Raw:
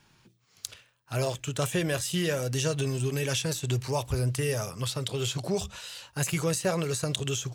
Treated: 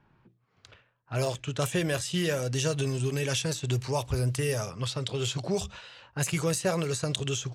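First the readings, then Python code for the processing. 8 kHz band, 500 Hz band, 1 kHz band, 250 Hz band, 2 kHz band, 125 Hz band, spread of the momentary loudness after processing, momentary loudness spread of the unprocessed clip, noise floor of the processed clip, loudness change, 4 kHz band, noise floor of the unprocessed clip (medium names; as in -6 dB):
-1.0 dB, 0.0 dB, 0.0 dB, 0.0 dB, 0.0 dB, 0.0 dB, 5 LU, 8 LU, -69 dBFS, 0.0 dB, -0.5 dB, -65 dBFS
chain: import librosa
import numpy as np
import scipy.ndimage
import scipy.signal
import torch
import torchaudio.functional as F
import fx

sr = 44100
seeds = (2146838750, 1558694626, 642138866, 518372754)

y = fx.env_lowpass(x, sr, base_hz=1400.0, full_db=-23.5)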